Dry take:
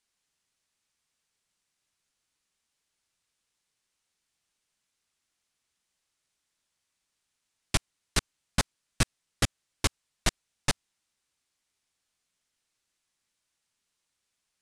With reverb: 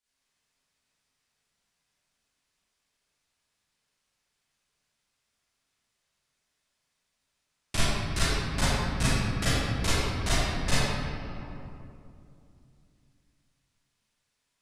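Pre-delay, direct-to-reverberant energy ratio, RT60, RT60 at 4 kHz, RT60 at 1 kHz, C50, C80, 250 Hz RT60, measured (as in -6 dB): 33 ms, -13.0 dB, 2.7 s, 1.5 s, 2.5 s, -6.5 dB, -3.0 dB, 3.4 s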